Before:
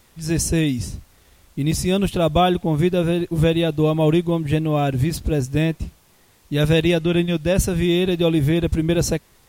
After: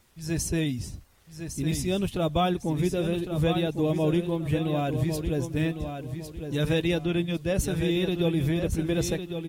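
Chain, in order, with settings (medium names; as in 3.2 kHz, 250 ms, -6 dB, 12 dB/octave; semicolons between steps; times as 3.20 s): coarse spectral quantiser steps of 15 dB; on a send: feedback delay 1105 ms, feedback 29%, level -8 dB; on the sum: trim -7.5 dB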